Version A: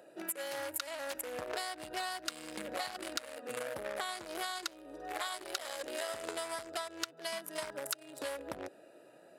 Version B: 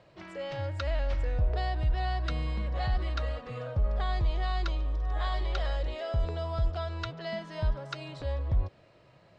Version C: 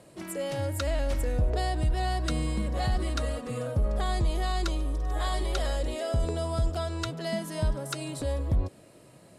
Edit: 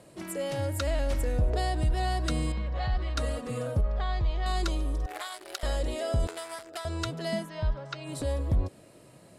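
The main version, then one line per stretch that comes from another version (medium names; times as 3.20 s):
C
2.52–3.17 s: from B
3.81–4.46 s: from B
5.06–5.63 s: from A
6.27–6.85 s: from A
7.45–8.08 s: from B, crossfade 0.10 s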